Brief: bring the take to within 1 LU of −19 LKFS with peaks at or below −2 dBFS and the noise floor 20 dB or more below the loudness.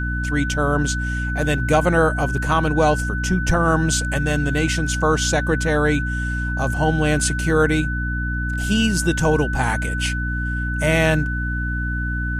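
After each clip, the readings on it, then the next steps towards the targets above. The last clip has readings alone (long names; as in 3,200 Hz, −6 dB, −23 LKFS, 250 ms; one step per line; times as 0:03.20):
mains hum 60 Hz; hum harmonics up to 300 Hz; level of the hum −22 dBFS; interfering tone 1,500 Hz; level of the tone −26 dBFS; integrated loudness −20.0 LKFS; sample peak −4.0 dBFS; target loudness −19.0 LKFS
→ mains-hum notches 60/120/180/240/300 Hz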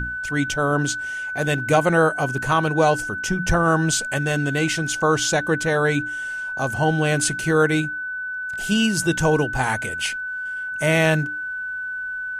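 mains hum none found; interfering tone 1,500 Hz; level of the tone −26 dBFS
→ notch filter 1,500 Hz, Q 30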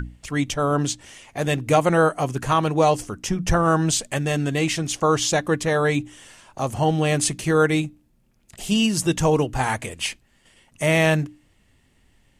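interfering tone none found; integrated loudness −21.5 LKFS; sample peak −5.5 dBFS; target loudness −19.0 LKFS
→ level +2.5 dB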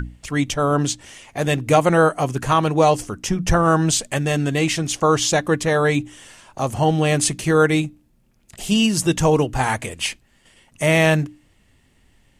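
integrated loudness −19.0 LKFS; sample peak −3.0 dBFS; background noise floor −59 dBFS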